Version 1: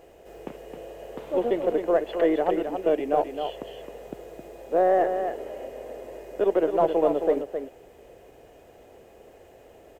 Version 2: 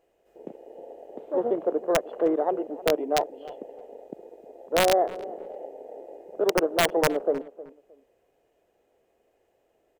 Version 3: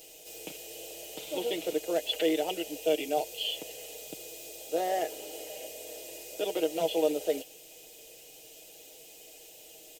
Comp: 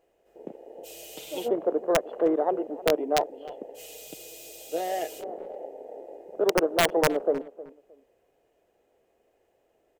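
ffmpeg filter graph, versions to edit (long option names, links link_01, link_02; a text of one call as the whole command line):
ffmpeg -i take0.wav -i take1.wav -i take2.wav -filter_complex "[2:a]asplit=2[link_01][link_02];[1:a]asplit=3[link_03][link_04][link_05];[link_03]atrim=end=0.87,asetpts=PTS-STARTPTS[link_06];[link_01]atrim=start=0.83:end=1.49,asetpts=PTS-STARTPTS[link_07];[link_04]atrim=start=1.45:end=3.8,asetpts=PTS-STARTPTS[link_08];[link_02]atrim=start=3.74:end=5.24,asetpts=PTS-STARTPTS[link_09];[link_05]atrim=start=5.18,asetpts=PTS-STARTPTS[link_10];[link_06][link_07]acrossfade=duration=0.04:curve1=tri:curve2=tri[link_11];[link_11][link_08]acrossfade=duration=0.04:curve1=tri:curve2=tri[link_12];[link_12][link_09]acrossfade=duration=0.06:curve1=tri:curve2=tri[link_13];[link_13][link_10]acrossfade=duration=0.06:curve1=tri:curve2=tri" out.wav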